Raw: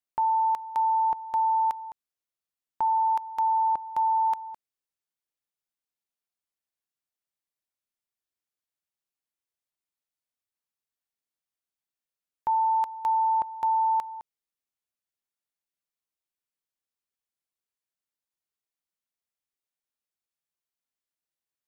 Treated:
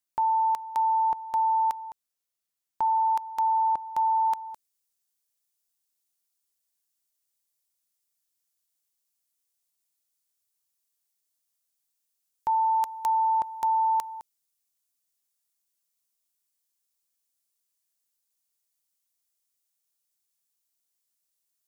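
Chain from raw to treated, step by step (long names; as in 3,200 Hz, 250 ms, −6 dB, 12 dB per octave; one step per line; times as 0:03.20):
bass and treble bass 0 dB, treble +7 dB, from 0:04.49 treble +14 dB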